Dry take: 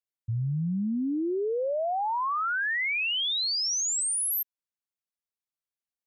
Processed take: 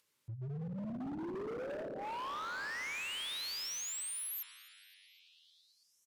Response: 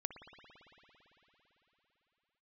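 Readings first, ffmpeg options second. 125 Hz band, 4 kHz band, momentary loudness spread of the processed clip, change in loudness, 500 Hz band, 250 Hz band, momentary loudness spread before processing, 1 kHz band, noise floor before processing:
−12.5 dB, −12.5 dB, 11 LU, −12.5 dB, −12.5 dB, −12.5 dB, 5 LU, −13.0 dB, below −85 dBFS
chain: -filter_complex "[0:a]asuperstop=centerf=720:order=4:qfactor=3.5[link_01];[1:a]atrim=start_sample=2205[link_02];[link_01][link_02]afir=irnorm=-1:irlink=0,aresample=32000,aresample=44100,highpass=100,highshelf=frequency=4700:gain=-4.5,acompressor=mode=upward:threshold=-52dB:ratio=2.5,equalizer=frequency=1500:width_type=o:width=0.77:gain=-2,bandreject=frequency=60:width_type=h:width=6,bandreject=frequency=120:width_type=h:width=6,bandreject=frequency=180:width_type=h:width=6,bandreject=frequency=240:width_type=h:width=6,bandreject=frequency=300:width_type=h:width=6,bandreject=frequency=360:width_type=h:width=6,bandreject=frequency=420:width_type=h:width=6,bandreject=frequency=480:width_type=h:width=6,bandreject=frequency=540:width_type=h:width=6,bandreject=frequency=600:width_type=h:width=6,asplit=4[link_03][link_04][link_05][link_06];[link_04]adelay=256,afreqshift=-48,volume=-23.5dB[link_07];[link_05]adelay=512,afreqshift=-96,volume=-29.9dB[link_08];[link_06]adelay=768,afreqshift=-144,volume=-36.3dB[link_09];[link_03][link_07][link_08][link_09]amix=inputs=4:normalize=0,asoftclip=type=hard:threshold=-34.5dB,volume=-4.5dB"

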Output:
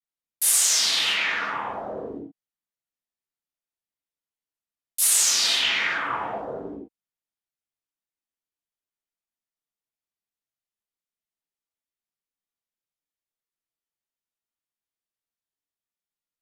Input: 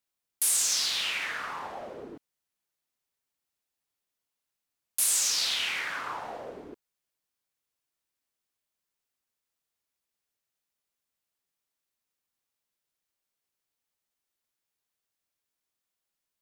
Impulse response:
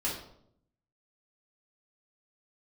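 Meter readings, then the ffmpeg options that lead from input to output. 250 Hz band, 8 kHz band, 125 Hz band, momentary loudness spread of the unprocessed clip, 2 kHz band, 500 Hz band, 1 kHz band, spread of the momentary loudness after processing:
+10.0 dB, +6.0 dB, +8.5 dB, 18 LU, +7.5 dB, +8.5 dB, +7.5 dB, 18 LU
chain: -filter_complex "[0:a]afwtdn=0.00562[link_01];[1:a]atrim=start_sample=2205,atrim=end_sample=4410,asetrate=30870,aresample=44100[link_02];[link_01][link_02]afir=irnorm=-1:irlink=0"

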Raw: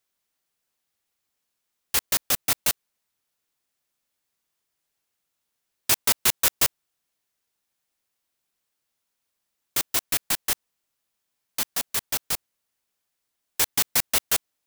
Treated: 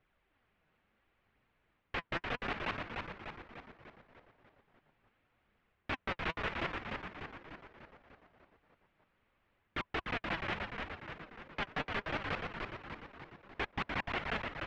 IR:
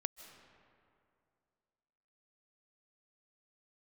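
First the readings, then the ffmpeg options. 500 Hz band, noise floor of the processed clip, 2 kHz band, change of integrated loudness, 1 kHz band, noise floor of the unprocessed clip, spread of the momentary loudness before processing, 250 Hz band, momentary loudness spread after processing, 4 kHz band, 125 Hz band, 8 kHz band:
−3.0 dB, −78 dBFS, −4.5 dB, −16.0 dB, −3.0 dB, −80 dBFS, 9 LU, −1.0 dB, 16 LU, −16.0 dB, −1.0 dB, below −40 dB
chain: -filter_complex "[0:a]flanger=delay=0.1:depth=6.6:regen=40:speed=0.72:shape=triangular,lowshelf=frequency=170:gain=9.5,bandreject=frequency=1000:width=25,areverse,acompressor=threshold=-34dB:ratio=8,areverse,afftfilt=real='re*lt(hypot(re,im),0.0398)':imag='im*lt(hypot(re,im),0.0398)':win_size=1024:overlap=0.75,lowpass=frequency=2500:width=0.5412,lowpass=frequency=2500:width=1.3066,alimiter=level_in=15dB:limit=-24dB:level=0:latency=1:release=58,volume=-15dB,equalizer=frequency=110:width_type=o:width=0.32:gain=-2.5,asplit=9[link_01][link_02][link_03][link_04][link_05][link_06][link_07][link_08][link_09];[link_02]adelay=297,afreqshift=-120,volume=-4dB[link_10];[link_03]adelay=594,afreqshift=-240,volume=-8.7dB[link_11];[link_04]adelay=891,afreqshift=-360,volume=-13.5dB[link_12];[link_05]adelay=1188,afreqshift=-480,volume=-18.2dB[link_13];[link_06]adelay=1485,afreqshift=-600,volume=-22.9dB[link_14];[link_07]adelay=1782,afreqshift=-720,volume=-27.7dB[link_15];[link_08]adelay=2079,afreqshift=-840,volume=-32.4dB[link_16];[link_09]adelay=2376,afreqshift=-960,volume=-37.1dB[link_17];[link_01][link_10][link_11][link_12][link_13][link_14][link_15][link_16][link_17]amix=inputs=9:normalize=0,volume=13.5dB"

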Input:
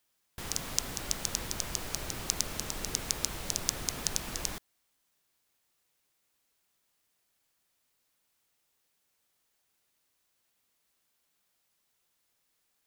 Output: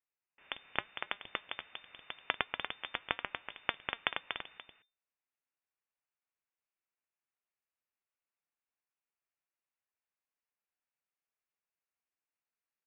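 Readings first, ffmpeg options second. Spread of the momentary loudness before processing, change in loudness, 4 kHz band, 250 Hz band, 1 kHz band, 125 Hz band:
5 LU, −6.5 dB, −5.0 dB, −10.5 dB, +2.0 dB, −16.0 dB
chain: -filter_complex "[0:a]highpass=frequency=740:width=0.5412,highpass=frequency=740:width=1.3066,aeval=exprs='0.841*(cos(1*acos(clip(val(0)/0.841,-1,1)))-cos(1*PI/2))+0.015*(cos(2*acos(clip(val(0)/0.841,-1,1)))-cos(2*PI/2))+0.0237*(cos(5*acos(clip(val(0)/0.841,-1,1)))-cos(5*PI/2))+0.15*(cos(7*acos(clip(val(0)/0.841,-1,1)))-cos(7*PI/2))+0.0596*(cos(8*acos(clip(val(0)/0.841,-1,1)))-cos(8*PI/2))':channel_layout=same,aeval=exprs='(mod(2*val(0)+1,2)-1)/2':channel_layout=same,flanger=delay=2.8:depth=2:regen=-82:speed=0.45:shape=sinusoidal,asplit=2[link_01][link_02];[link_02]aecho=0:1:239:0.473[link_03];[link_01][link_03]amix=inputs=2:normalize=0,lowpass=frequency=3100:width_type=q:width=0.5098,lowpass=frequency=3100:width_type=q:width=0.6013,lowpass=frequency=3100:width_type=q:width=0.9,lowpass=frequency=3100:width_type=q:width=2.563,afreqshift=-3600,volume=8dB"

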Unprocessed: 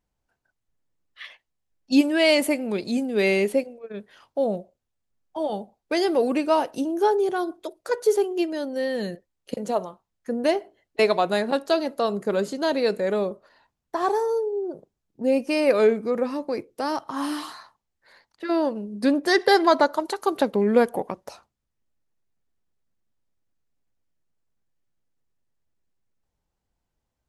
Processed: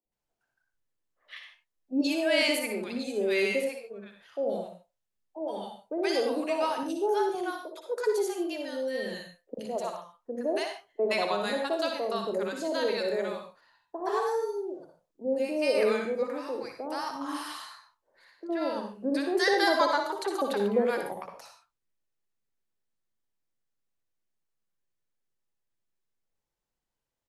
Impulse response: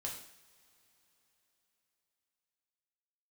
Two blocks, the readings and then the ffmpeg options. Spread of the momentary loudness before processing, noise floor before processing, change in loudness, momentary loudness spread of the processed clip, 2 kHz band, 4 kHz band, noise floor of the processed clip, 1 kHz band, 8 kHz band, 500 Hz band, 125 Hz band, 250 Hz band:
16 LU, −81 dBFS, −6.0 dB, 16 LU, −3.5 dB, −3.0 dB, −84 dBFS, −5.5 dB, −3.0 dB, −6.0 dB, can't be measured, −8.0 dB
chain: -filter_complex "[0:a]equalizer=frequency=61:width=0.51:gain=-12,acrossover=split=230|760[link_01][link_02][link_03];[link_01]adelay=50[link_04];[link_03]adelay=120[link_05];[link_04][link_02][link_05]amix=inputs=3:normalize=0,asplit=2[link_06][link_07];[1:a]atrim=start_sample=2205,atrim=end_sample=4410,adelay=59[link_08];[link_07][link_08]afir=irnorm=-1:irlink=0,volume=-3dB[link_09];[link_06][link_09]amix=inputs=2:normalize=0,volume=-4.5dB"

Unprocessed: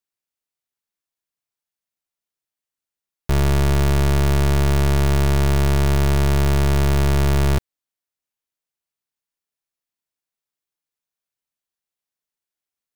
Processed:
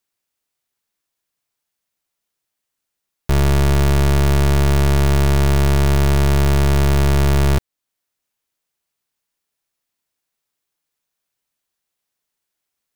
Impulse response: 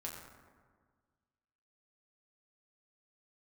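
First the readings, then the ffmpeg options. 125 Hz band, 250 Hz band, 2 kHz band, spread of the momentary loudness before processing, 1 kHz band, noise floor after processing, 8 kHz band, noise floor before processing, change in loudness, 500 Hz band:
+2.5 dB, +2.5 dB, +2.5 dB, 2 LU, +2.5 dB, −80 dBFS, +2.5 dB, below −85 dBFS, +2.5 dB, +2.5 dB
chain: -af "alimiter=limit=-22.5dB:level=0:latency=1:release=418,volume=9dB"

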